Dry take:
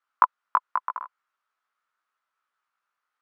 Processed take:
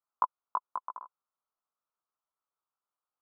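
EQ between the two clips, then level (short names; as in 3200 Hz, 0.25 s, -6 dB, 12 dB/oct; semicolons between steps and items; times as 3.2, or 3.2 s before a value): LPF 1000 Hz 24 dB/oct; -5.5 dB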